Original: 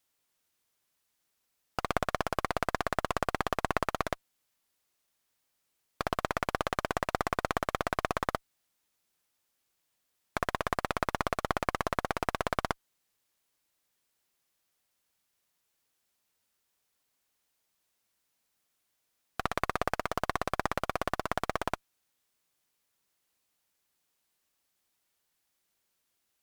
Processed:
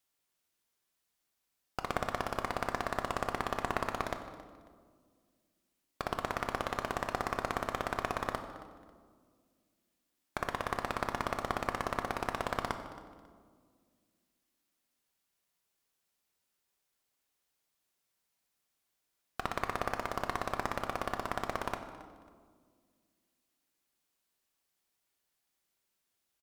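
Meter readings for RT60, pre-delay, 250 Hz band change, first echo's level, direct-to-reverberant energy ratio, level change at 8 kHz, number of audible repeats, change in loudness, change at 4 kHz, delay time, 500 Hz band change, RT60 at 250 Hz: 1.8 s, 3 ms, -3.0 dB, -18.0 dB, 6.5 dB, -3.5 dB, 2, -3.0 dB, -3.5 dB, 272 ms, -3.5 dB, 2.7 s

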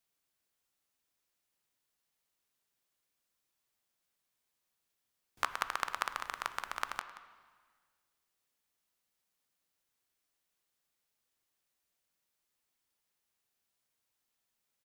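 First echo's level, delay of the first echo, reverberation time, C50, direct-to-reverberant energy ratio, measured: -15.5 dB, 179 ms, 1.6 s, 11.0 dB, 9.5 dB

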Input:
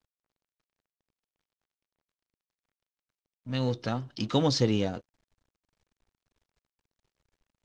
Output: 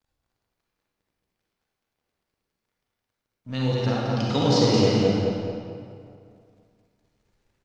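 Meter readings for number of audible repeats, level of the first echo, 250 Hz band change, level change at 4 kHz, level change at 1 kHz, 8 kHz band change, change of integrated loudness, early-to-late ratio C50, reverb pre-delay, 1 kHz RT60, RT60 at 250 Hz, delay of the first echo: 1, -5.0 dB, +7.0 dB, +6.0 dB, +7.5 dB, +5.5 dB, +6.0 dB, -5.0 dB, 38 ms, 2.3 s, 2.3 s, 217 ms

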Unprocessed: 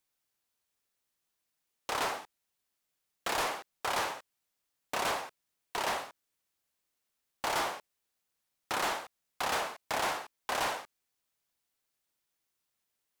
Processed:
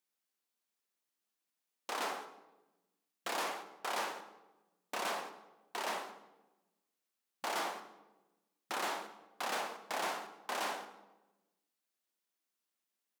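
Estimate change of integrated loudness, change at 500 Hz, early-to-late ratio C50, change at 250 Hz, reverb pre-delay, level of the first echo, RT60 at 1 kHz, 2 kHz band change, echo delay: -5.5 dB, -4.5 dB, 11.5 dB, -4.0 dB, 3 ms, -22.0 dB, 0.95 s, -5.0 dB, 198 ms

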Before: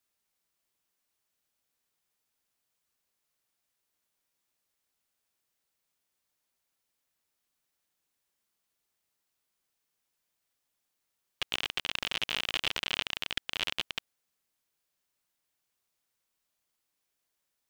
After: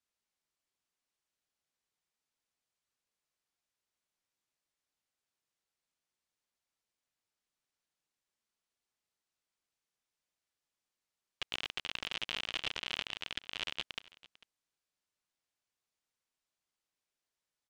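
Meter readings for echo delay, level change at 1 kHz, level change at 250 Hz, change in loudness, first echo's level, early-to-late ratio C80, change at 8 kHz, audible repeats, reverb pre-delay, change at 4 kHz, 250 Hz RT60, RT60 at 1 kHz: 447 ms, -6.0 dB, -6.0 dB, -6.0 dB, -20.5 dB, no reverb, -7.5 dB, 1, no reverb, -6.0 dB, no reverb, no reverb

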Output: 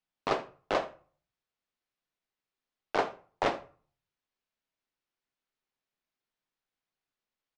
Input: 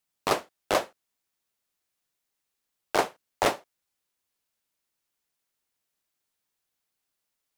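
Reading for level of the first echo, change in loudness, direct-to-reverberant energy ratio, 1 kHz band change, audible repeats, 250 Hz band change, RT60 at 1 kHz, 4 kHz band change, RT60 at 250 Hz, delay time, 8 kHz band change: -19.5 dB, -4.5 dB, 10.0 dB, -4.0 dB, 1, -3.5 dB, 0.40 s, -7.0 dB, 0.50 s, 78 ms, -15.5 dB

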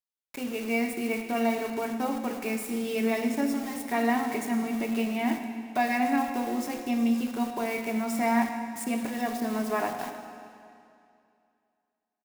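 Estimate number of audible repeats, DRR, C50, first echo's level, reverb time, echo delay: 1, 4.5 dB, 6.0 dB, -15.0 dB, 2.5 s, 104 ms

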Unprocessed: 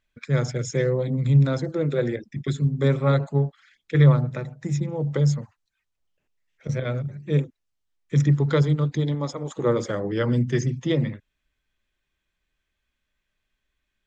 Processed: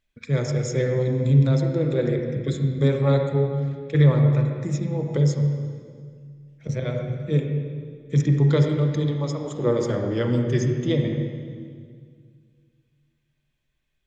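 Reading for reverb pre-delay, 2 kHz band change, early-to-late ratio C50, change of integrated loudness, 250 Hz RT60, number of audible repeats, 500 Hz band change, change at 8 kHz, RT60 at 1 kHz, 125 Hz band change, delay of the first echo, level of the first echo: 34 ms, -2.0 dB, 3.5 dB, +1.0 dB, 2.4 s, no echo, +1.5 dB, no reading, 1.8 s, +1.0 dB, no echo, no echo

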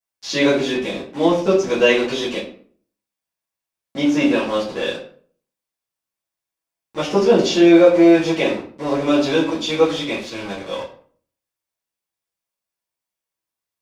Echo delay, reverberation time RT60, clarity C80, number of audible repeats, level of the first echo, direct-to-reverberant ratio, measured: no echo, 0.50 s, 11.0 dB, no echo, no echo, -11.0 dB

